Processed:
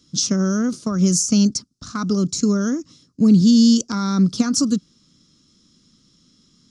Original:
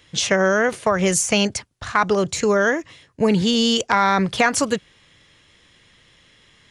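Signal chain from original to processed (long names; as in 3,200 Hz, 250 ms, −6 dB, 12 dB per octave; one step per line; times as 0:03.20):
drawn EQ curve 110 Hz 0 dB, 170 Hz +11 dB, 250 Hz +15 dB, 450 Hz −4 dB, 870 Hz −14 dB, 1,300 Hz 0 dB, 1,800 Hz −18 dB, 2,900 Hz −10 dB, 5,300 Hz +13 dB, 10,000 Hz −2 dB
level −6 dB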